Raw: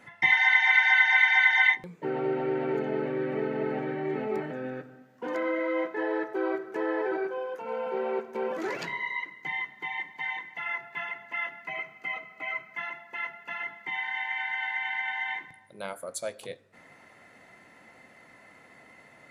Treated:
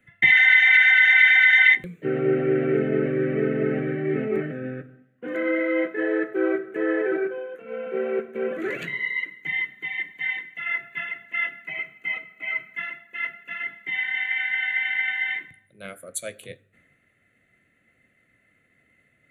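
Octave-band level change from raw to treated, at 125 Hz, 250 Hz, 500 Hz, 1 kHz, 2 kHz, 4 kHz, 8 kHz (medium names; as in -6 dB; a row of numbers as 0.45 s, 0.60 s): +10.0 dB, +7.0 dB, +5.5 dB, -6.5 dB, +6.0 dB, +5.0 dB, no reading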